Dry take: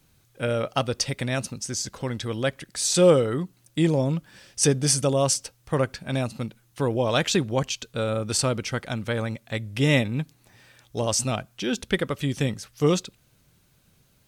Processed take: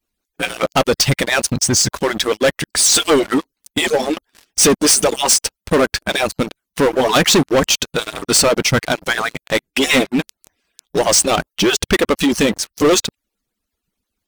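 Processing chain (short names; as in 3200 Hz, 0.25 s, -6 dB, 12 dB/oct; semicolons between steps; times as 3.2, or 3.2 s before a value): median-filter separation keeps percussive; sample leveller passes 5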